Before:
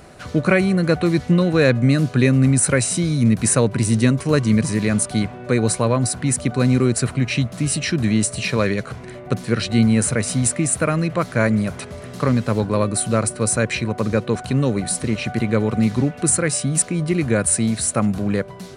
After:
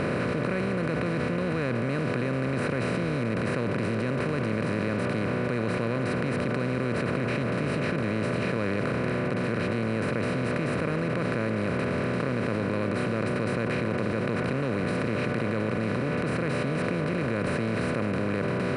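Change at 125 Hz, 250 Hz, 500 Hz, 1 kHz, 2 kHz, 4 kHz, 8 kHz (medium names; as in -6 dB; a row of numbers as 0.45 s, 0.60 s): -9.5 dB, -9.0 dB, -6.0 dB, -4.5 dB, -4.5 dB, -11.0 dB, -28.5 dB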